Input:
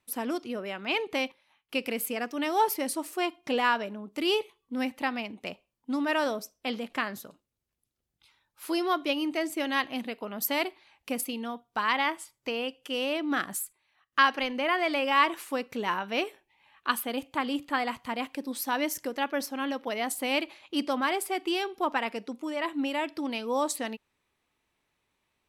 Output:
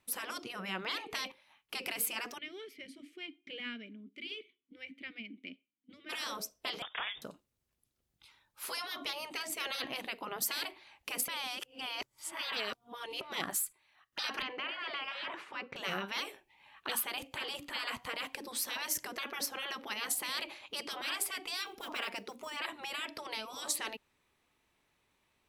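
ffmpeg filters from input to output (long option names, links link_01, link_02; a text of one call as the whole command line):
ffmpeg -i in.wav -filter_complex "[0:a]asplit=3[link_01][link_02][link_03];[link_01]afade=type=out:start_time=2.37:duration=0.02[link_04];[link_02]asplit=3[link_05][link_06][link_07];[link_05]bandpass=frequency=270:width_type=q:width=8,volume=0dB[link_08];[link_06]bandpass=frequency=2290:width_type=q:width=8,volume=-6dB[link_09];[link_07]bandpass=frequency=3010:width_type=q:width=8,volume=-9dB[link_10];[link_08][link_09][link_10]amix=inputs=3:normalize=0,afade=type=in:start_time=2.37:duration=0.02,afade=type=out:start_time=6.09:duration=0.02[link_11];[link_03]afade=type=in:start_time=6.09:duration=0.02[link_12];[link_04][link_11][link_12]amix=inputs=3:normalize=0,asettb=1/sr,asplit=3[link_13][link_14][link_15];[link_13]atrim=end=6.824[link_16];[link_14]atrim=start=6.82:end=7.22,asetpts=PTS-STARTPTS,afade=type=in:duration=0.004:curve=qsin,afade=type=out:start_time=0.396:duration=0.004:curve=qsin,lowpass=frequency=3200:width_type=q:width=0.5098,lowpass=frequency=3200:width_type=q:width=0.6013,lowpass=frequency=3200:width_type=q:width=0.9,lowpass=frequency=3200:width_type=q:width=2.563,afreqshift=-3800[link_17];[link_15]atrim=start=7.216[link_18];[link_16][link_17]acrossfade=duration=0.004:curve1=hsin:curve2=qsin[link_19];[link_19][link_18]acrossfade=duration=0.004:curve1=qsin:curve2=hsin,asettb=1/sr,asplit=3[link_20][link_21][link_22];[link_20]atrim=end=14.424[link_23];[link_21]atrim=start=14.42:end=15.76,asetpts=PTS-STARTPTS,afade=type=in:duration=0.004:curve=qsin,afade=type=out:start_time=1.336:duration=0.004:curve=qsin,highpass=100,lowpass=2400[link_24];[link_22]atrim=start=15.756[link_25];[link_23][link_24]acrossfade=duration=0.004:curve1=hsin:curve2=qsin[link_26];[link_26][link_25]acrossfade=duration=0.004:curve1=qsin:curve2=hsin,asettb=1/sr,asplit=3[link_27][link_28][link_29];[link_27]atrim=end=21.664[link_30];[link_28]atrim=start=21.66:end=22.57,asetpts=PTS-STARTPTS,afade=type=in:duration=0.004:curve=qsin,afade=type=out:start_time=0.906:duration=0.004:curve=qsin,acrusher=bits=9:mode=log:mix=0:aa=0.000001[link_31];[link_29]atrim=start=22.566[link_32];[link_30][link_31]acrossfade=duration=0.004:curve1=hsin:curve2=qsin[link_33];[link_33][link_32]acrossfade=duration=0.004:curve1=qsin:curve2=hsin,asplit=3[link_34][link_35][link_36];[link_34]atrim=end=11.282[link_37];[link_35]atrim=start=11.278:end=13.212,asetpts=PTS-STARTPTS,areverse[link_38];[link_36]atrim=start=13.208[link_39];[link_37][link_38]acrossfade=duration=0.004:curve1=hsin:curve2=hsin[link_40];[link_40][link_39]acrossfade=duration=0.004:curve1=hsin:curve2=hsin,afftfilt=real='re*lt(hypot(re,im),0.0708)':imag='im*lt(hypot(re,im),0.0708)':win_size=1024:overlap=0.75,volume=2dB" out.wav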